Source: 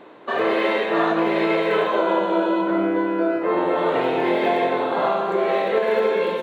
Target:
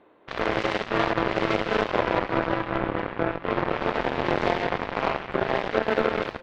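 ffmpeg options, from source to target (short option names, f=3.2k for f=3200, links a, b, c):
-af "tremolo=f=210:d=0.4,aeval=exprs='0.422*(cos(1*acos(clip(val(0)/0.422,-1,1)))-cos(1*PI/2))+0.0075*(cos(5*acos(clip(val(0)/0.422,-1,1)))-cos(5*PI/2))+0.0841*(cos(7*acos(clip(val(0)/0.422,-1,1)))-cos(7*PI/2))':c=same,aemphasis=mode=reproduction:type=50kf"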